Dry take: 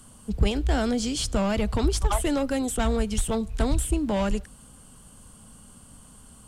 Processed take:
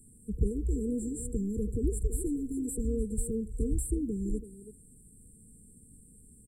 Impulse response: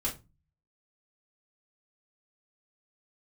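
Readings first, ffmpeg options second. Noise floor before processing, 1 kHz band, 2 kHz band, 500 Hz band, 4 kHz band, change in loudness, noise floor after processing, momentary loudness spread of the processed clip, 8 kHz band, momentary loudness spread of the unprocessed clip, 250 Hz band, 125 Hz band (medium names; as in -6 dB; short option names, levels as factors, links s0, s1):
-51 dBFS, under -40 dB, under -40 dB, -9.0 dB, under -40 dB, -7.0 dB, -57 dBFS, 6 LU, -7.0 dB, 3 LU, -6.0 dB, -6.0 dB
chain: -filter_complex "[0:a]asplit=2[s0][s1];[s1]adelay=330,highpass=300,lowpass=3400,asoftclip=type=hard:threshold=0.0891,volume=0.355[s2];[s0][s2]amix=inputs=2:normalize=0,afftfilt=real='re*(1-between(b*sr/4096,490,7200))':imag='im*(1-between(b*sr/4096,490,7200))':win_size=4096:overlap=0.75,volume=0.501"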